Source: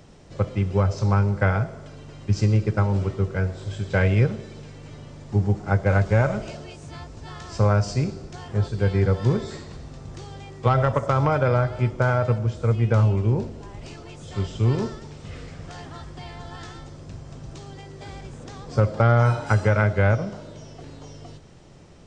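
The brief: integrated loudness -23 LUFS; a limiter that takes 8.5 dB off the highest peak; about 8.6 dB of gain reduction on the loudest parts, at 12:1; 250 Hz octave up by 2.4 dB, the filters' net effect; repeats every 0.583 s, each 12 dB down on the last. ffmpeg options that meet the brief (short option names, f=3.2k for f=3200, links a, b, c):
-af "equalizer=f=250:t=o:g=3.5,acompressor=threshold=-22dB:ratio=12,alimiter=limit=-19dB:level=0:latency=1,aecho=1:1:583|1166|1749:0.251|0.0628|0.0157,volume=8.5dB"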